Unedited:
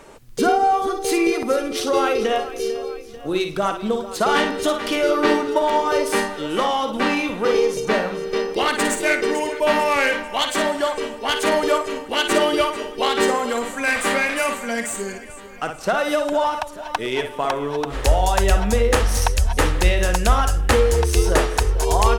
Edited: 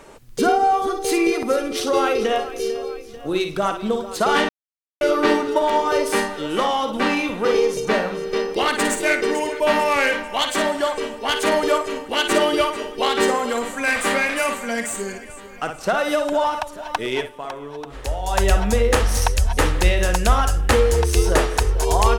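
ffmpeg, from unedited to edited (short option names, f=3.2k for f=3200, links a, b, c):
-filter_complex "[0:a]asplit=5[a][b][c][d][e];[a]atrim=end=4.49,asetpts=PTS-STARTPTS,afade=t=out:st=4.486:d=0.004:c=hsin[f];[b]atrim=start=4.49:end=5.01,asetpts=PTS-STARTPTS,volume=0[g];[c]atrim=start=5.01:end=17.32,asetpts=PTS-STARTPTS,afade=t=in:d=0.004:c=hsin,afade=t=out:st=12.16:d=0.15:silence=0.354813[h];[d]atrim=start=17.32:end=18.24,asetpts=PTS-STARTPTS,volume=-9dB[i];[e]atrim=start=18.24,asetpts=PTS-STARTPTS,afade=t=in:d=0.15:silence=0.354813[j];[f][g][h][i][j]concat=n=5:v=0:a=1"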